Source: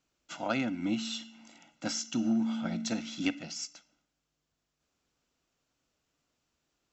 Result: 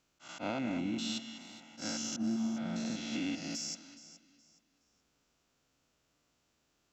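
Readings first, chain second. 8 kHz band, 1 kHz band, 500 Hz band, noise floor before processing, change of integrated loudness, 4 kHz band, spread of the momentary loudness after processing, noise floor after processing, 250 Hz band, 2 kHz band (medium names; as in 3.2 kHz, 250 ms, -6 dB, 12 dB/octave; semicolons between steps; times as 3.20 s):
no reading, -4.0 dB, -3.5 dB, -84 dBFS, -3.5 dB, -1.5 dB, 16 LU, -77 dBFS, -3.5 dB, -4.5 dB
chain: spectrogram pixelated in time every 200 ms; in parallel at -3.5 dB: saturation -35 dBFS, distortion -9 dB; on the sum: slow attack 112 ms; compression 4:1, threshold -35 dBFS, peak gain reduction 8.5 dB; on a send: echo whose repeats swap between lows and highs 210 ms, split 1.6 kHz, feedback 52%, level -9.5 dB; on the sum: Chebyshev shaper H 3 -20 dB, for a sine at -27 dBFS; trim +3.5 dB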